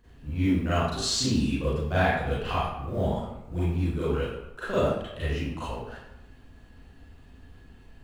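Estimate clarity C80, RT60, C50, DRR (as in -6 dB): 2.0 dB, 0.90 s, -4.0 dB, -12.5 dB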